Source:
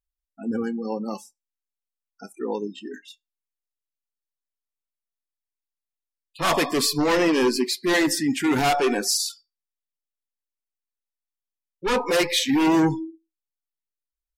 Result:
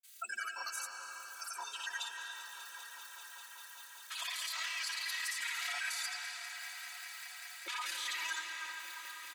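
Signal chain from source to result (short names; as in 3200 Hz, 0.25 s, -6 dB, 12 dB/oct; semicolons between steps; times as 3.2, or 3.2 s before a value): HPF 1500 Hz 24 dB/oct; high shelf 2900 Hz +9.5 dB; notch 5300 Hz, Q 8.9; comb 3.1 ms, depth 90%; upward compressor, threshold -34 dBFS; limiter -33.5 dBFS, peak gain reduction 32 dB; grains, pitch spread up and down by 0 st; granular stretch 0.65×, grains 56 ms; swelling echo 0.197 s, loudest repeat 5, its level -17.5 dB; reverb RT60 5.2 s, pre-delay 0.159 s, DRR 2.5 dB; gain +5 dB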